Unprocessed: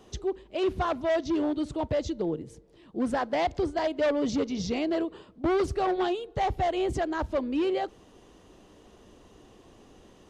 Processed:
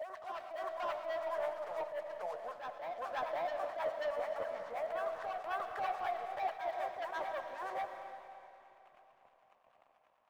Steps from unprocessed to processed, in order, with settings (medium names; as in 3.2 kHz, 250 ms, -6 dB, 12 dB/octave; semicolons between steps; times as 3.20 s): level-controlled noise filter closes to 1.2 kHz, open at -24.5 dBFS; elliptic band-pass 620–1800 Hz, stop band 40 dB; expander -59 dBFS; waveshaping leveller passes 1; compression 5:1, threshold -41 dBFS, peak gain reduction 16.5 dB; waveshaping leveller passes 2; harmonic tremolo 9.3 Hz, depth 70%, crossover 840 Hz; reverse echo 537 ms -4.5 dB; reverberation RT60 3.0 s, pre-delay 70 ms, DRR 6 dB; attacks held to a fixed rise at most 120 dB/s; trim +1.5 dB